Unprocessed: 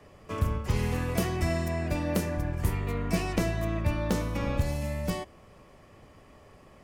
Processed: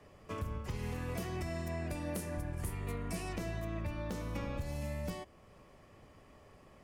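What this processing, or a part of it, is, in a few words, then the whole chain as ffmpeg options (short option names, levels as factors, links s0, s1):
stacked limiters: -filter_complex "[0:a]alimiter=limit=0.1:level=0:latency=1:release=186,alimiter=limit=0.0631:level=0:latency=1:release=467,asettb=1/sr,asplit=3[s0][s1][s2];[s0]atrim=end=1.914[s3];[s1]atrim=start=1.91:end=3.29,asetpts=PTS-STARTPTS,afade=t=in:d=0.004:c=qsin,afade=t=out:st=1.376:d=0.004:c=qsin,equalizer=f=10000:t=o:w=0.72:g=10.5[s4];[s2]atrim=start=3.286[s5];[s3][s4]acrossfade=d=0.004:c1=hsin:c2=qsin[s6];[s6][s5]acrossfade=d=0.004:c1=qsin:c2=hsin,volume=0.562"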